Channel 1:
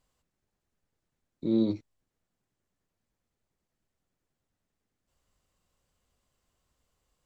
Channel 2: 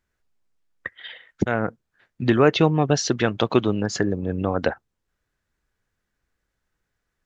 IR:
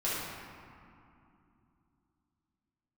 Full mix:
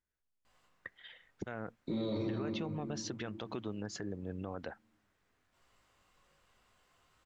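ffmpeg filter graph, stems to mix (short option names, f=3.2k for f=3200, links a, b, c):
-filter_complex "[0:a]flanger=delay=18.5:depth=3.4:speed=0.75,equalizer=f=1.6k:w=0.39:g=12,adelay=450,volume=-0.5dB,asplit=2[a][b];[b]volume=-7dB[c];[1:a]acompressor=threshold=-18dB:ratio=6,volume=-15dB[d];[2:a]atrim=start_sample=2205[e];[c][e]afir=irnorm=-1:irlink=0[f];[a][d][f]amix=inputs=3:normalize=0,alimiter=level_in=4.5dB:limit=-24dB:level=0:latency=1:release=38,volume=-4.5dB"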